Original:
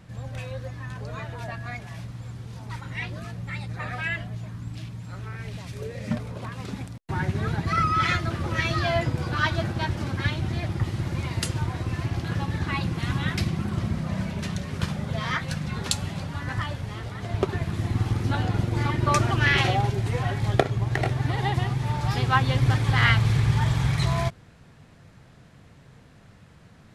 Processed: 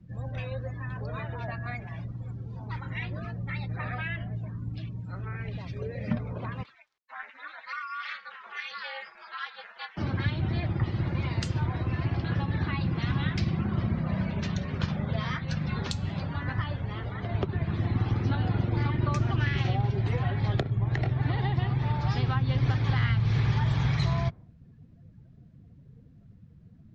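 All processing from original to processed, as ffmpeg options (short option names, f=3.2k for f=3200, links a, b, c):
-filter_complex "[0:a]asettb=1/sr,asplit=3[a][b][c];[a]atrim=end=6.634[d];[b]atrim=start=6.63:end=9.97,asetpts=PTS-STARTPTS,afade=t=in:d=0.004:c=qsin,afade=t=out:st=3.336:d=0.004:c=qsin,highpass=1.3k,highshelf=f=7.2k:g=-8.5,aeval=exprs='val(0)*sin(2*PI*140*n/s)':c=same[e];[c]atrim=start=9.966[f];[d][e]acrossfade=d=0.004:c1=hsin:c2=qsin[g];[g][f]acrossfade=d=0.004:c1=qsin:c2=hsin,lowpass=f=6.8k:w=0.5412,lowpass=f=6.8k:w=1.3066,afftdn=nr=22:nf=-47,acrossover=split=87|260[h][i][j];[h]acompressor=threshold=-33dB:ratio=4[k];[i]acompressor=threshold=-24dB:ratio=4[l];[j]acompressor=threshold=-34dB:ratio=4[m];[k][l][m]amix=inputs=3:normalize=0"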